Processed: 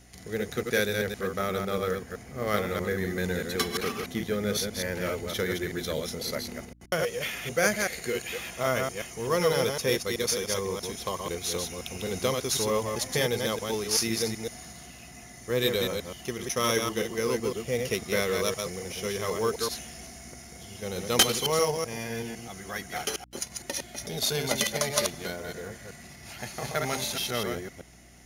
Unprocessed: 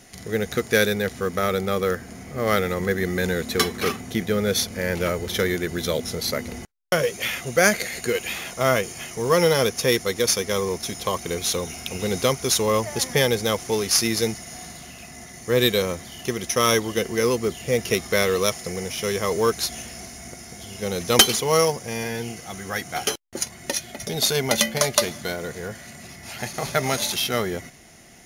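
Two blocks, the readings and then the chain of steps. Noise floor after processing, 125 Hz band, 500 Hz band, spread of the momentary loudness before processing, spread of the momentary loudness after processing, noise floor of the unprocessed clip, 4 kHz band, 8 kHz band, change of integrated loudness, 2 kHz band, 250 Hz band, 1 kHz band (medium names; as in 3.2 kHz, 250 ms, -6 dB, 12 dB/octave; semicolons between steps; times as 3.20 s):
-48 dBFS, -6.0 dB, -6.0 dB, 14 LU, 13 LU, -42 dBFS, -6.0 dB, -6.0 dB, -6.0 dB, -6.0 dB, -6.0 dB, -6.0 dB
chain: chunks repeated in reverse 127 ms, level -4 dB; hum 60 Hz, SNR 27 dB; trim -7.5 dB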